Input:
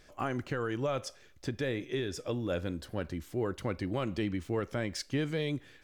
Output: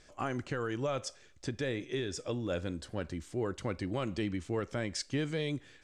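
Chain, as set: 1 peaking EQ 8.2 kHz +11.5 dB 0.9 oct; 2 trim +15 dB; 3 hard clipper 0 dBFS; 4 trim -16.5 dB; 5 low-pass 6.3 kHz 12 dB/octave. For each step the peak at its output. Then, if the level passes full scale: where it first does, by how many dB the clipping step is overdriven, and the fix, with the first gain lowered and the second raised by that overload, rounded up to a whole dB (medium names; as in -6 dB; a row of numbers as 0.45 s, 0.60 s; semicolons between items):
-19.5 dBFS, -4.5 dBFS, -4.5 dBFS, -21.0 dBFS, -24.0 dBFS; nothing clips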